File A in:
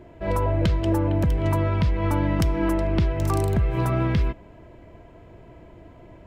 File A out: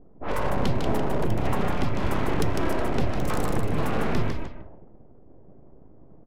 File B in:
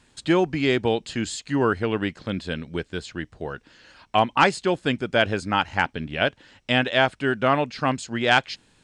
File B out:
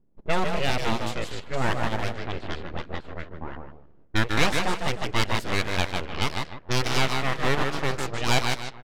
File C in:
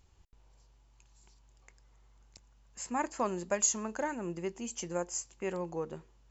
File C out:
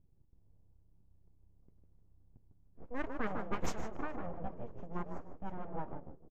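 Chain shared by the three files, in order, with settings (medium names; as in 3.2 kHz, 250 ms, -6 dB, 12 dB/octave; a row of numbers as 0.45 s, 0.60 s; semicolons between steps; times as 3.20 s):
frequency-shifting echo 152 ms, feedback 36%, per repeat -31 Hz, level -4.5 dB; full-wave rectifier; level-controlled noise filter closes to 330 Hz, open at -19.5 dBFS; trim -1.5 dB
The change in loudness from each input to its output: -4.5 LU, -4.0 LU, -8.0 LU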